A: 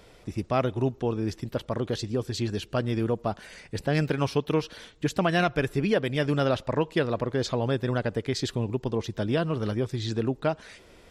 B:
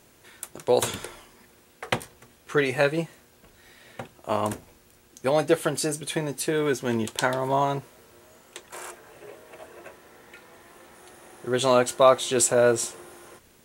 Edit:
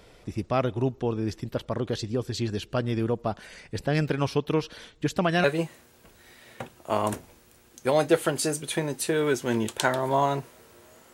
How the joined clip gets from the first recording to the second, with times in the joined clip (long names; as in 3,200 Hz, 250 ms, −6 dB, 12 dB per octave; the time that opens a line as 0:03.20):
A
0:05.44: continue with B from 0:02.83